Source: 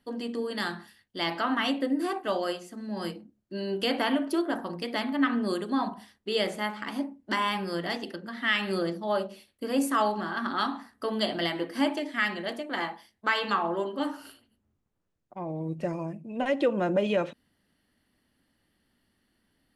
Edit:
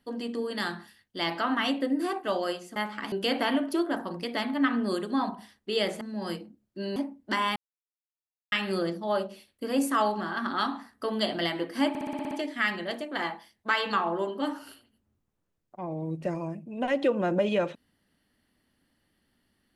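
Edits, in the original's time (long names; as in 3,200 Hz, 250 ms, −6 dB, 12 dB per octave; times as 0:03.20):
0:02.76–0:03.71: swap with 0:06.60–0:06.96
0:07.56–0:08.52: silence
0:11.89: stutter 0.06 s, 8 plays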